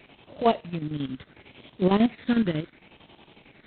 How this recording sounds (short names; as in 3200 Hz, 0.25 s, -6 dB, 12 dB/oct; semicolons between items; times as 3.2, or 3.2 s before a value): chopped level 11 Hz, depth 65%, duty 65%; a quantiser's noise floor 10-bit, dither none; phasing stages 12, 0.71 Hz, lowest notch 760–1700 Hz; G.726